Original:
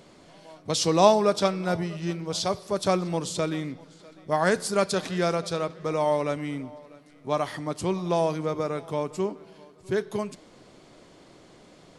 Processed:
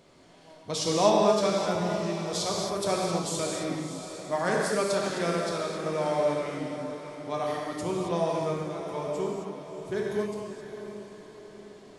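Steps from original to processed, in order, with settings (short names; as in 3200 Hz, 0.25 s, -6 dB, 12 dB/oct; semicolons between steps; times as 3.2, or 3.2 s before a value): 2.22–3.41 high shelf 6800 Hz +9 dB; 8.52–8.94 compressor, threshold -31 dBFS, peak gain reduction 7.5 dB; diffused feedback echo 0.643 s, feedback 48%, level -10 dB; non-linear reverb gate 0.29 s flat, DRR -2 dB; gain -6.5 dB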